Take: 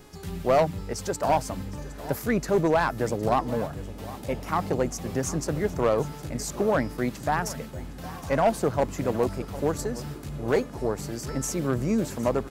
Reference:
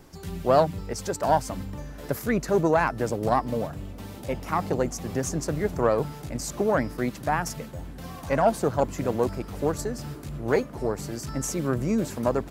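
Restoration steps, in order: clip repair -14.5 dBFS; de-hum 419 Hz, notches 29; inverse comb 0.762 s -18 dB

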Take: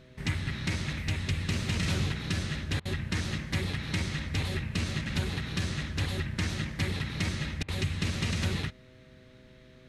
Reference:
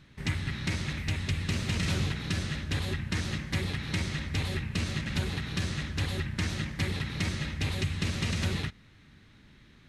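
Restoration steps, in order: de-hum 127.3 Hz, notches 5; interpolate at 2.8/7.63, 52 ms

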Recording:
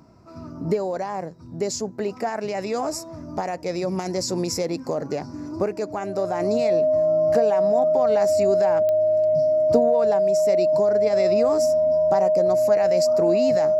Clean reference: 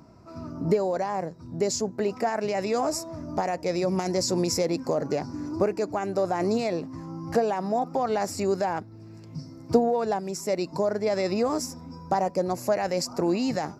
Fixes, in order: de-click; notch 620 Hz, Q 30

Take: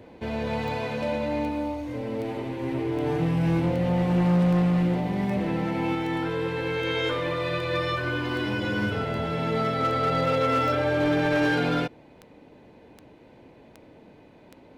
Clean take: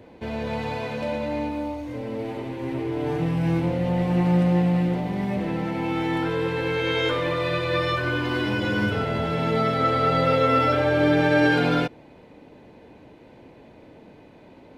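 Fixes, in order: clip repair -18 dBFS; de-click; gain 0 dB, from 5.95 s +3 dB

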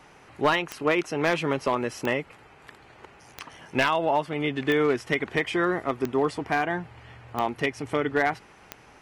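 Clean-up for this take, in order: clip repair -14 dBFS; de-click

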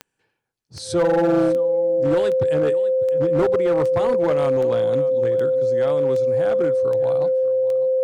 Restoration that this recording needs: clip repair -13.5 dBFS; de-click; notch 520 Hz, Q 30; inverse comb 0.6 s -17 dB

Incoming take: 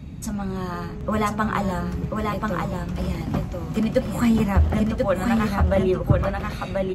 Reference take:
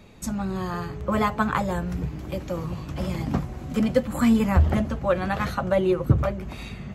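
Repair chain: noise print and reduce 6 dB; inverse comb 1.037 s -3.5 dB

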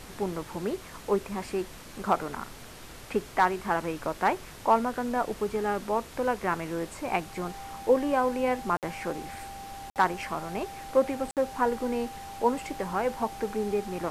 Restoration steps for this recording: clip repair -12 dBFS; notch 790 Hz, Q 30; interpolate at 8.77/9.9/11.31, 58 ms; denoiser 29 dB, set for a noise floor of -45 dBFS

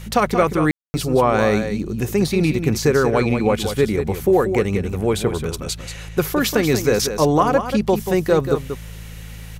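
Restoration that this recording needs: de-hum 54.4 Hz, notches 3; room tone fill 0.71–0.94; expander -26 dBFS, range -21 dB; inverse comb 0.185 s -8.5 dB

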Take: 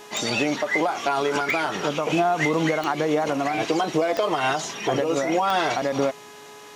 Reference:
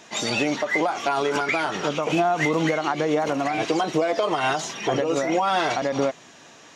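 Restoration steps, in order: de-click; de-hum 419.1 Hz, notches 35; notch 1000 Hz, Q 30

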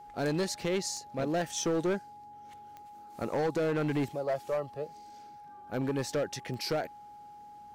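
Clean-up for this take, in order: clip repair -25.5 dBFS; de-click; notch 830 Hz, Q 30

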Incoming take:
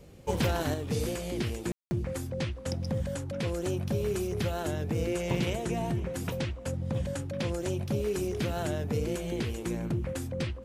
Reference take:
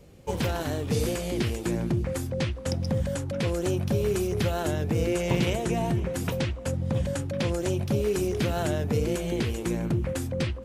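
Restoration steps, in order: room tone fill 1.72–1.91; gain 0 dB, from 0.74 s +4.5 dB

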